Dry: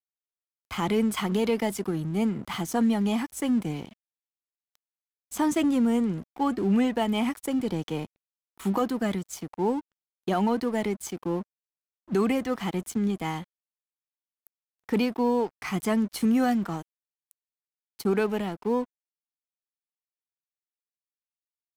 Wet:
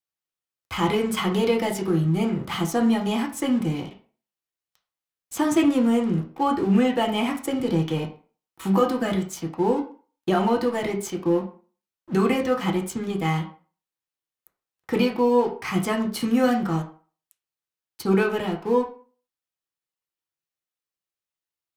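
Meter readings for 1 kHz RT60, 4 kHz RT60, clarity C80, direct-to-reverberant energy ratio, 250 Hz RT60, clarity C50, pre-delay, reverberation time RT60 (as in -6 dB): 0.40 s, 0.30 s, 14.5 dB, 0.0 dB, 0.35 s, 10.5 dB, 3 ms, 0.40 s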